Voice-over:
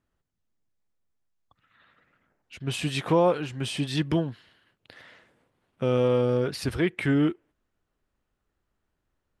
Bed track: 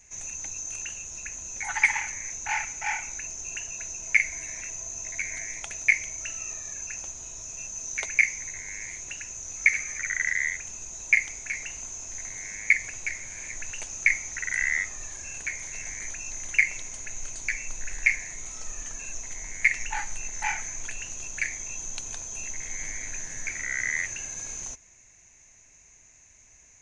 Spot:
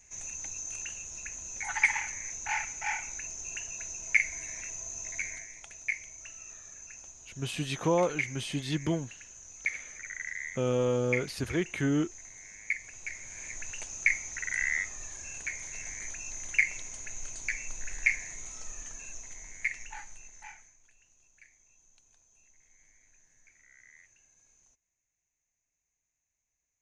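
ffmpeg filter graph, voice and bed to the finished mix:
ffmpeg -i stem1.wav -i stem2.wav -filter_complex "[0:a]adelay=4750,volume=-5dB[link_01];[1:a]volume=4dB,afade=type=out:start_time=5.23:duration=0.25:silence=0.398107,afade=type=in:start_time=12.84:duration=0.62:silence=0.421697,afade=type=out:start_time=18.32:duration=2.46:silence=0.0562341[link_02];[link_01][link_02]amix=inputs=2:normalize=0" out.wav

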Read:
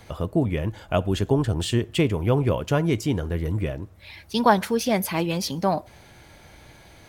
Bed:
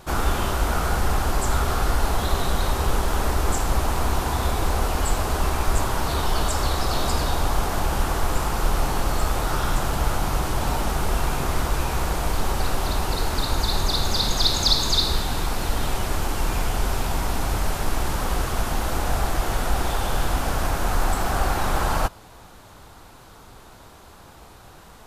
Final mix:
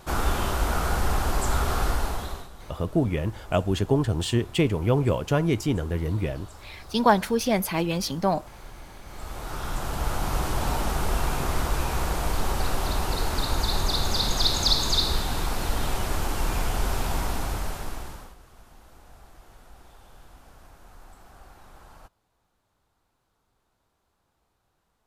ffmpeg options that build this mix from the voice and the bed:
ffmpeg -i stem1.wav -i stem2.wav -filter_complex "[0:a]adelay=2600,volume=-1dB[link_01];[1:a]volume=18dB,afade=type=out:start_time=1.84:duration=0.65:silence=0.0944061,afade=type=in:start_time=9.04:duration=1.39:silence=0.0944061,afade=type=out:start_time=17.18:duration=1.17:silence=0.0562341[link_02];[link_01][link_02]amix=inputs=2:normalize=0" out.wav

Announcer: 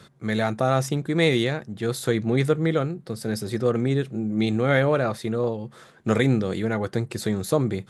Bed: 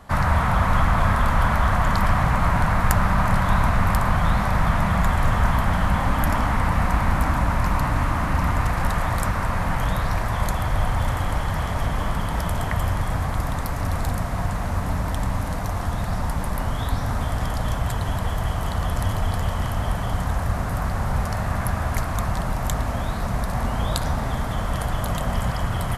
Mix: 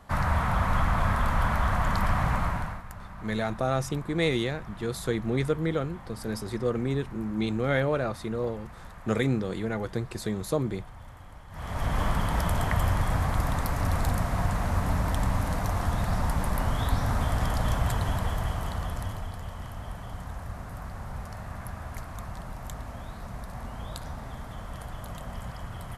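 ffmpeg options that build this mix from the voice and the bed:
ffmpeg -i stem1.wav -i stem2.wav -filter_complex "[0:a]adelay=3000,volume=-5.5dB[link_01];[1:a]volume=15.5dB,afade=type=out:start_time=2.34:duration=0.49:silence=0.133352,afade=type=in:start_time=11.5:duration=0.5:silence=0.0841395,afade=type=out:start_time=17.87:duration=1.46:silence=0.251189[link_02];[link_01][link_02]amix=inputs=2:normalize=0" out.wav

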